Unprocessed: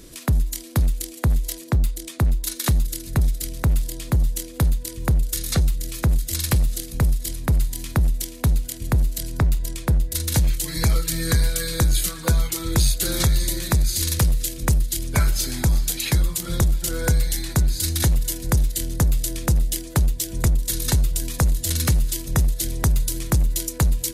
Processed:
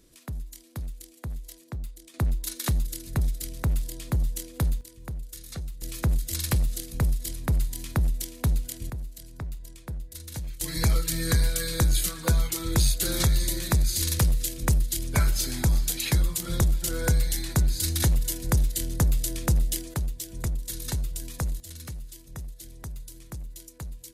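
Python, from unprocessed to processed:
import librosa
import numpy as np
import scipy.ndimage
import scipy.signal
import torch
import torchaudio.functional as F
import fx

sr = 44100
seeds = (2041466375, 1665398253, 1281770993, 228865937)

y = fx.gain(x, sr, db=fx.steps((0.0, -15.5), (2.14, -6.0), (4.81, -16.0), (5.82, -5.0), (8.9, -16.0), (10.61, -3.5), (19.94, -10.0), (21.6, -19.0)))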